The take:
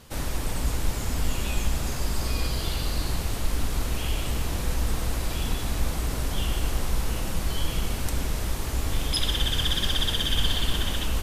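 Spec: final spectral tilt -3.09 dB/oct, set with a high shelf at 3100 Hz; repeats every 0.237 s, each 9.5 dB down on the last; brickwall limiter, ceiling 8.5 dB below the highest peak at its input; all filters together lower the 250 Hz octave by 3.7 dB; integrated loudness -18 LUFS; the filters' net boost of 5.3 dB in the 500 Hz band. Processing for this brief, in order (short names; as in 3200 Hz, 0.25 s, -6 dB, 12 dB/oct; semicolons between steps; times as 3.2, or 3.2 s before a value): bell 250 Hz -8 dB; bell 500 Hz +8.5 dB; high shelf 3100 Hz +5 dB; limiter -17 dBFS; feedback echo 0.237 s, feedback 33%, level -9.5 dB; gain +10 dB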